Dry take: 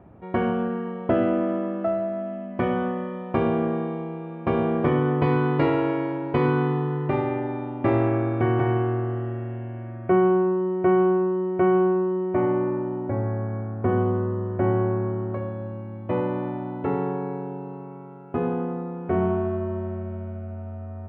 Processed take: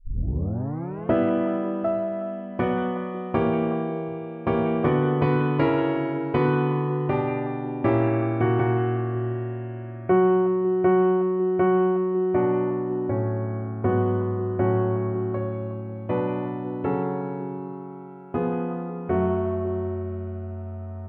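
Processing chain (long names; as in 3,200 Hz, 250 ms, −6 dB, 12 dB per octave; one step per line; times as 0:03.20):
turntable start at the beginning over 1.13 s
echo through a band-pass that steps 183 ms, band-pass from 2,500 Hz, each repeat −1.4 octaves, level −7.5 dB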